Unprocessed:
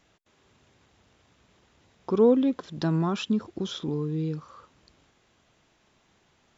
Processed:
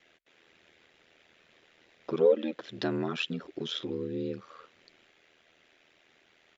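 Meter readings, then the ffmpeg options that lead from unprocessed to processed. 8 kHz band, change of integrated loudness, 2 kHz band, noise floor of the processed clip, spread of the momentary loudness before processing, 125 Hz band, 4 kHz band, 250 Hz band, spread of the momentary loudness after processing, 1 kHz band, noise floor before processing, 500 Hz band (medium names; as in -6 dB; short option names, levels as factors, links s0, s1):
no reading, -5.0 dB, +3.0 dB, -66 dBFS, 13 LU, -11.5 dB, +1.5 dB, -9.0 dB, 13 LU, -6.5 dB, -66 dBFS, -2.5 dB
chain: -filter_complex "[0:a]acrossover=split=160 4200:gain=0.141 1 0.224[s0][s1][s2];[s0][s1][s2]amix=inputs=3:normalize=0,aecho=1:1:6.1:0.89,aeval=exprs='val(0)*sin(2*PI*40*n/s)':c=same,asplit=2[s3][s4];[s4]acompressor=threshold=0.0158:ratio=6,volume=0.891[s5];[s3][s5]amix=inputs=2:normalize=0,equalizer=f=125:t=o:w=1:g=-11,equalizer=f=250:t=o:w=1:g=-6,equalizer=f=1000:t=o:w=1:g=-11,equalizer=f=2000:t=o:w=1:g=4"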